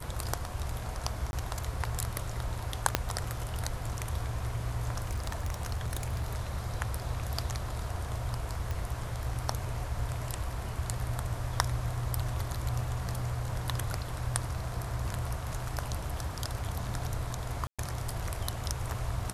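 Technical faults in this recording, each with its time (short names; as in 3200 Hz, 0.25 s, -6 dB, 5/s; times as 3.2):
1.31–1.33 gap 21 ms
2.95 pop -7 dBFS
5.1–6.4 clipped -28 dBFS
8.71 pop
17.67–17.79 gap 0.116 s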